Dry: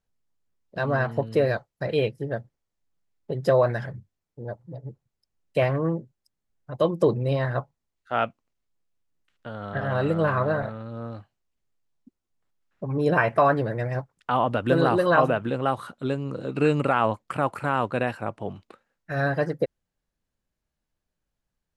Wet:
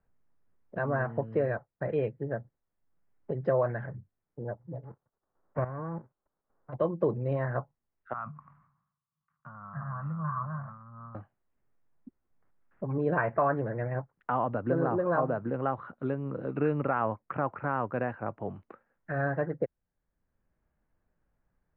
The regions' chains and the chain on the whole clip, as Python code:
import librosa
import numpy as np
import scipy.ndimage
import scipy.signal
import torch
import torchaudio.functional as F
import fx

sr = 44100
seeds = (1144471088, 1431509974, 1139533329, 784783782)

y = fx.envelope_flatten(x, sr, power=0.3, at=(4.83, 6.72), fade=0.02)
y = fx.lowpass(y, sr, hz=1300.0, slope=24, at=(4.83, 6.72), fade=0.02)
y = fx.level_steps(y, sr, step_db=11, at=(4.83, 6.72), fade=0.02)
y = fx.chain(y, sr, fx.double_bandpass(hz=410.0, octaves=2.9),
    fx.sustainer(db_per_s=85.0), at=(8.13, 11.15))
y = fx.chain(y, sr, fx.highpass(hz=58.0, slope=12),
    fx.high_shelf(hz=2700.0, db=-10.5),
    fx.resample_linear(factor=8), at=(14.54, 15.54))
y = scipy.signal.sosfilt(scipy.signal.butter(4, 1900.0, 'lowpass', fs=sr, output='sos'), y)
y = fx.band_squash(y, sr, depth_pct=40)
y = F.gain(torch.from_numpy(y), -5.5).numpy()